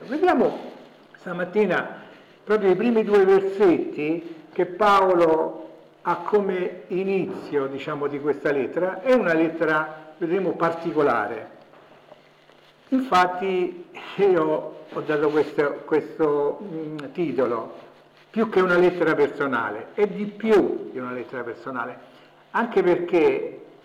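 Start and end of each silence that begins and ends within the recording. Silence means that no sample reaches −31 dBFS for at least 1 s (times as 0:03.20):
0:11.45–0:12.92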